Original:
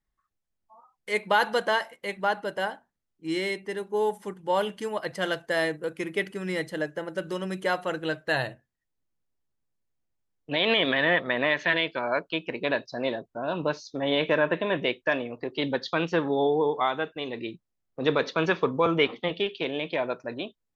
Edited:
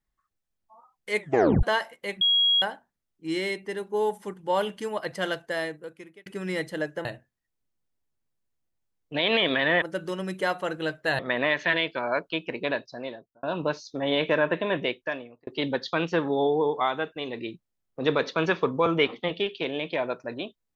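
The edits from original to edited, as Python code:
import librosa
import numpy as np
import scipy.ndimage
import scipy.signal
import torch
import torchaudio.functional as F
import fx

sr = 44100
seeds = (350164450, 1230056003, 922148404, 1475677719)

y = fx.edit(x, sr, fx.tape_stop(start_s=1.19, length_s=0.44),
    fx.bleep(start_s=2.21, length_s=0.41, hz=3300.0, db=-18.0),
    fx.fade_out_span(start_s=5.2, length_s=1.06),
    fx.move(start_s=7.05, length_s=1.37, to_s=11.19),
    fx.fade_out_span(start_s=12.59, length_s=0.84),
    fx.fade_out_span(start_s=14.78, length_s=0.69), tone=tone)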